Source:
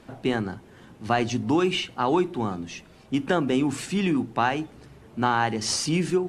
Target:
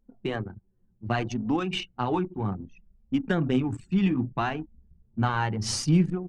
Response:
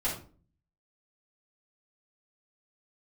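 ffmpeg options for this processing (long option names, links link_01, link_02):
-af "asubboost=boost=3.5:cutoff=190,flanger=delay=3.8:depth=7:regen=22:speed=0.64:shape=sinusoidal,anlmdn=15.8"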